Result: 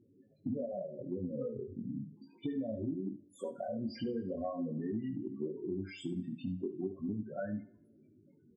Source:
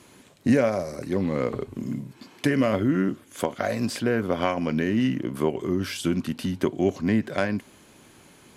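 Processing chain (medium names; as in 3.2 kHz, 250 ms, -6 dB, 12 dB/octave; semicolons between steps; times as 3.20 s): 3.99–5.21 s: jump at every zero crossing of -28 dBFS; loudest bins only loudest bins 8; chorus 0.39 Hz, delay 18 ms, depth 4.5 ms; compression, threshold -30 dBFS, peak gain reduction 11.5 dB; delay 72 ms -14.5 dB; two-slope reverb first 0.69 s, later 2.2 s, from -25 dB, DRR 15.5 dB; trim -4.5 dB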